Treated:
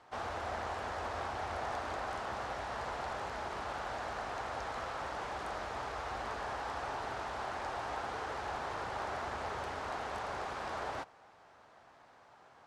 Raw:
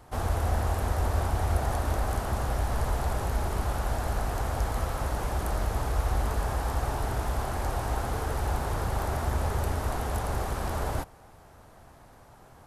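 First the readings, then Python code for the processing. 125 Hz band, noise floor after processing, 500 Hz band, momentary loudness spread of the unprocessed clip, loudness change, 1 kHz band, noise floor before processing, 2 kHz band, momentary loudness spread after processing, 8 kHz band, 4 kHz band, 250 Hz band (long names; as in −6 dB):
−21.5 dB, −61 dBFS, −6.5 dB, 3 LU, −9.0 dB, −4.0 dB, −53 dBFS, −2.5 dB, 1 LU, −13.5 dB, −4.5 dB, −12.0 dB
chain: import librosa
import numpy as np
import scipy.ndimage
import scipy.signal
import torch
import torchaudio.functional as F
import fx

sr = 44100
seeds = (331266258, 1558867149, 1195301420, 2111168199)

y = fx.highpass(x, sr, hz=1000.0, slope=6)
y = fx.air_absorb(y, sr, metres=130.0)
y = fx.doppler_dist(y, sr, depth_ms=0.24)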